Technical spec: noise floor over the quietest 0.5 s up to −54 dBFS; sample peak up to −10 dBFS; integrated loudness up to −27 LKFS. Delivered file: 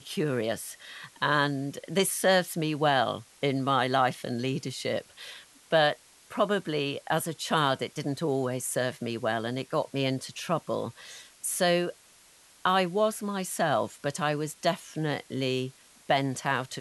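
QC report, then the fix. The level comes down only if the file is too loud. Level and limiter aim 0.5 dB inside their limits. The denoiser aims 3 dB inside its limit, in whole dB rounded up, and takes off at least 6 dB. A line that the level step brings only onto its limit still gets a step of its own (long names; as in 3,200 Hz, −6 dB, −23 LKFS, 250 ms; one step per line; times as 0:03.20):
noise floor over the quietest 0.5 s −57 dBFS: in spec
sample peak −11.5 dBFS: in spec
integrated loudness −28.5 LKFS: in spec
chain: no processing needed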